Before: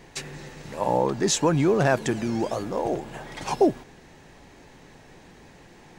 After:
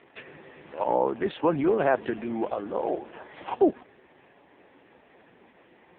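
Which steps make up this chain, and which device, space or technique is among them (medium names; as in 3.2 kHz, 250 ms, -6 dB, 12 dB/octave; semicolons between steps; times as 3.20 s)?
telephone (band-pass 270–3500 Hz; AMR-NB 4.75 kbps 8 kHz)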